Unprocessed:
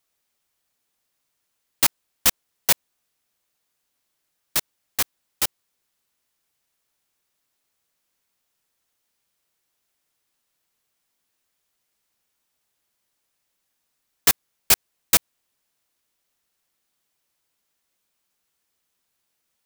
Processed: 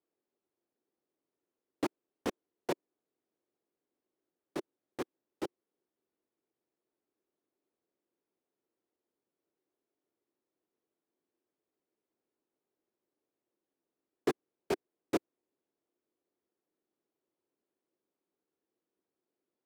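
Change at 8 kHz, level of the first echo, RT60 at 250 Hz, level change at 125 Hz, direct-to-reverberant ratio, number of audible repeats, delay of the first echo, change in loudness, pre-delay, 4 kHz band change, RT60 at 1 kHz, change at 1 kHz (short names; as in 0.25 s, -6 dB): -31.0 dB, none, none, -10.0 dB, none, none, none, -18.0 dB, none, -24.0 dB, none, -10.5 dB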